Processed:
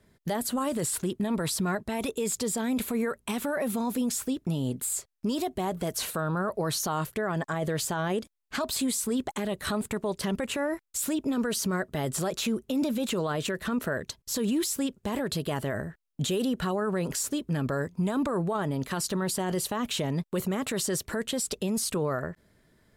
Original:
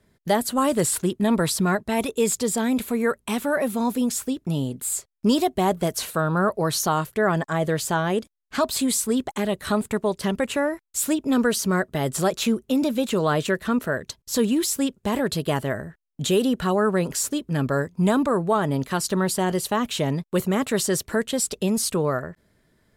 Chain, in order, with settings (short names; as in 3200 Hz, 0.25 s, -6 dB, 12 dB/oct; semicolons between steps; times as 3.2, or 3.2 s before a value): limiter -21 dBFS, peak gain reduction 11.5 dB